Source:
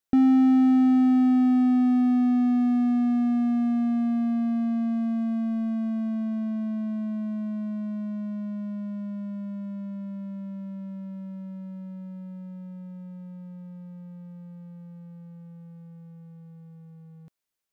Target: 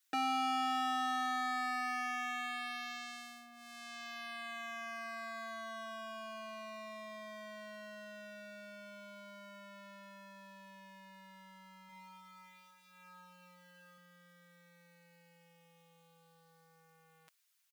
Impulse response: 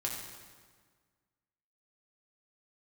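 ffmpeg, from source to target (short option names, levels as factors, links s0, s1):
-filter_complex "[0:a]highpass=1500,aecho=1:1:6.3:0.8,asettb=1/sr,asplit=3[s0][s1][s2];[s0]atrim=end=11.864[s3];[s1]atrim=start=11.86:end=13.98,asetpts=PTS-STARTPTS,afade=t=in:d=0.004:c=qsin,afade=t=out:st=2.116:d=0.004:c=qsin,aecho=1:1:30|63|99.3|139.2|183.2:0.631|0.398|0.251|0.158|0.1,atrim=end_sample=93492[s4];[s2]atrim=start=13.976[s5];[s3][s4]acrossfade=d=0.004:c1=hsin:c2=qsin[s6];[s6][s5]acrossfade=d=0.004:c1=qsin:c2=hsin,volume=2.24"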